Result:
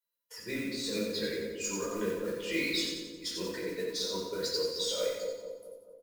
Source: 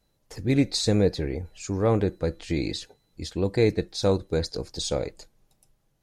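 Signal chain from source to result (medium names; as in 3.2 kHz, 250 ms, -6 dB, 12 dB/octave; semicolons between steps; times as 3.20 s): expander on every frequency bin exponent 1.5; high-pass 550 Hz 12 dB/octave; comb 4.1 ms, depth 41%; compressor with a negative ratio -37 dBFS, ratio -1; modulation noise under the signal 17 dB; Butterworth band-stop 770 Hz, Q 2.9; on a send: two-band feedback delay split 930 Hz, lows 218 ms, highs 89 ms, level -5 dB; on the sum: simulated room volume 540 m³, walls furnished, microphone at 4.7 m; trim -4.5 dB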